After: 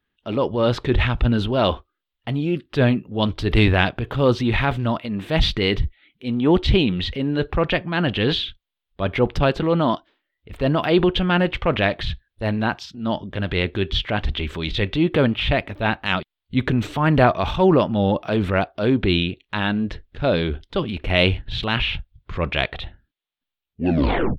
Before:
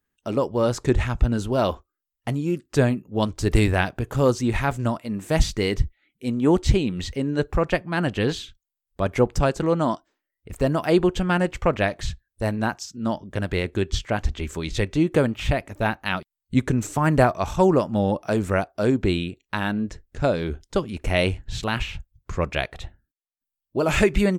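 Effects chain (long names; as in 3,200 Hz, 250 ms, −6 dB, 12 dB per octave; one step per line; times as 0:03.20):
turntable brake at the end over 0.85 s
high shelf with overshoot 5,000 Hz −13.5 dB, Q 3
transient designer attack −5 dB, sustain +4 dB
level +3 dB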